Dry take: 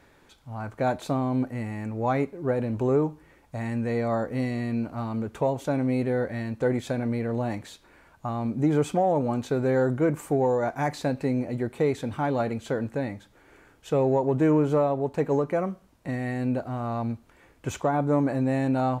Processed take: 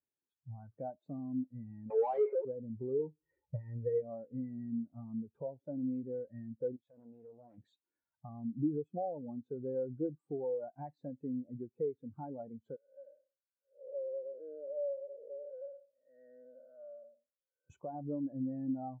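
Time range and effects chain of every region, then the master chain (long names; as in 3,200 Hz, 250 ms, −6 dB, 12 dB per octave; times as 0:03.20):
0:01.90–0:02.45: linear-phase brick-wall high-pass 370 Hz + mid-hump overdrive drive 38 dB, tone 5,900 Hz, clips at −13.5 dBFS
0:02.99–0:04.02: comb filter 2.1 ms, depth 57% + transient designer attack +11 dB, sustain +6 dB
0:06.76–0:07.58: low-shelf EQ 490 Hz −7.5 dB + downward compressor 5 to 1, threshold −34 dBFS + highs frequency-modulated by the lows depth 0.72 ms
0:12.76–0:17.70: spectrum smeared in time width 325 ms + pair of resonant band-passes 920 Hz, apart 1.4 octaves
whole clip: high-pass filter 76 Hz; downward compressor 3 to 1, threshold −40 dBFS; every bin expanded away from the loudest bin 2.5 to 1; level +2 dB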